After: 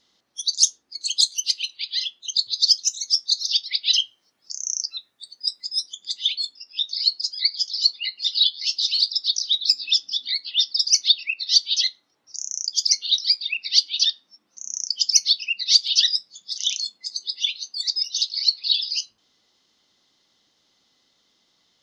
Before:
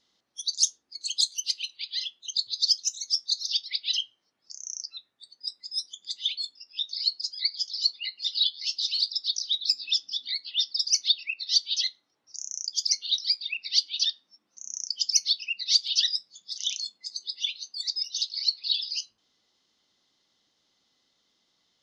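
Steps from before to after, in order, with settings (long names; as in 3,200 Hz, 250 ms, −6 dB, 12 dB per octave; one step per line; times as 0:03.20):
0:03.83–0:05.69: high-shelf EQ 5,500 Hz +7.5 dB
level +6 dB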